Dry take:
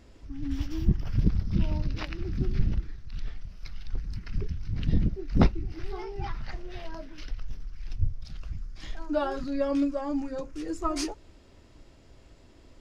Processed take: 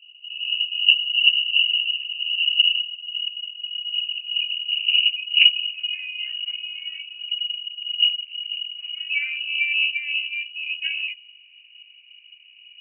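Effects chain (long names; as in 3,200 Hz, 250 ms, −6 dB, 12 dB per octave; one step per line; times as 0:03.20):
sub-octave generator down 2 octaves, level +2 dB
low-pass filter sweep 190 Hz → 500 Hz, 0:02.60–0:05.10
voice inversion scrambler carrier 2,900 Hz
level −1 dB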